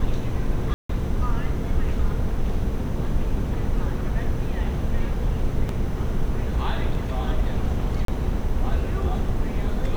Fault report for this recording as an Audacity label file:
0.740000	0.890000	dropout 154 ms
5.690000	5.690000	dropout 2.1 ms
8.050000	8.080000	dropout 33 ms

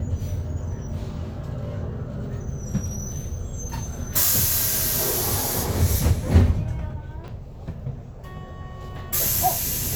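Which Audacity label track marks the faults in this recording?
7.280000	7.280000	dropout 3.2 ms

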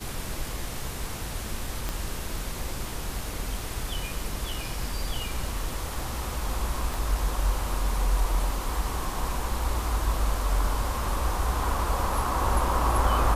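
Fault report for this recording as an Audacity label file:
1.890000	1.890000	pop -15 dBFS
6.940000	6.940000	pop

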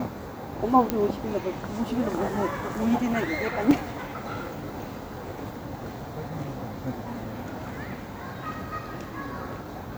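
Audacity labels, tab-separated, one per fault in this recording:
0.900000	0.900000	pop -9 dBFS
3.710000	3.710000	dropout 3.5 ms

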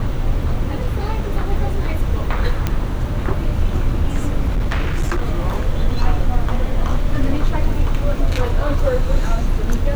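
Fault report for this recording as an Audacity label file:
2.670000	2.670000	pop -6 dBFS
4.480000	5.230000	clipped -13.5 dBFS

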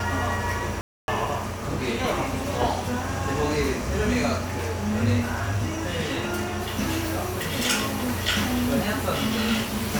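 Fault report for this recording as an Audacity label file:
0.810000	1.080000	dropout 271 ms

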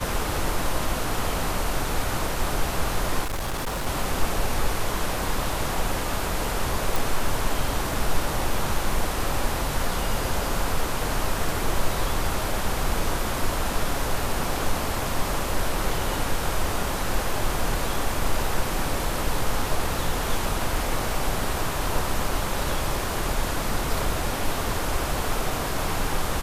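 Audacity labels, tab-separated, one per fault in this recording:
3.230000	3.870000	clipped -24.5 dBFS
6.960000	6.960000	pop

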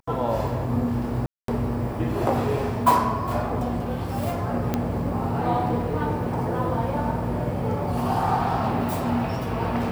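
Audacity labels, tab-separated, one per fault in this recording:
1.260000	1.480000	dropout 223 ms
4.740000	4.740000	pop -10 dBFS

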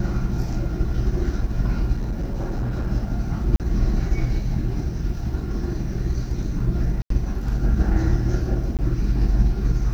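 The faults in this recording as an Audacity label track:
1.950000	2.880000	clipped -21 dBFS
3.560000	3.600000	dropout 38 ms
7.020000	7.100000	dropout 83 ms
8.770000	8.790000	dropout 18 ms

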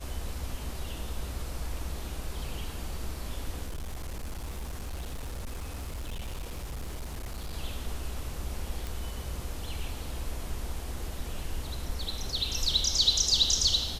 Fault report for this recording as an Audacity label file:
3.670000	7.540000	clipped -32.5 dBFS
8.870000	8.870000	pop

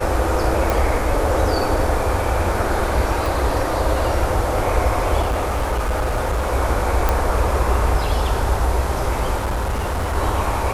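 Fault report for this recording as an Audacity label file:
0.700000	0.700000	pop
3.260000	3.260000	pop
5.210000	6.530000	clipped -16.5 dBFS
7.090000	7.090000	pop
9.360000	10.160000	clipped -18 dBFS

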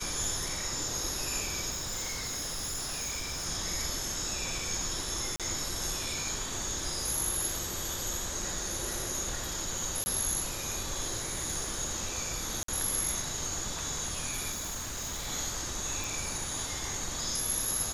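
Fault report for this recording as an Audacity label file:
1.700000	3.470000	clipped -32 dBFS
5.360000	5.400000	dropout 37 ms
10.040000	10.060000	dropout 20 ms
12.630000	12.680000	dropout 53 ms
14.510000	15.280000	clipped -33 dBFS
16.040000	16.040000	pop

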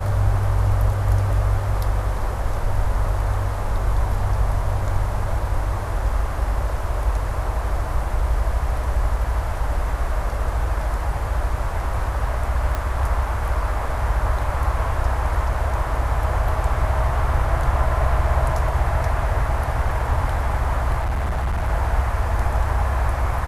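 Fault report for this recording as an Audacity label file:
12.750000	12.750000	pop -12 dBFS
20.980000	21.690000	clipped -19 dBFS

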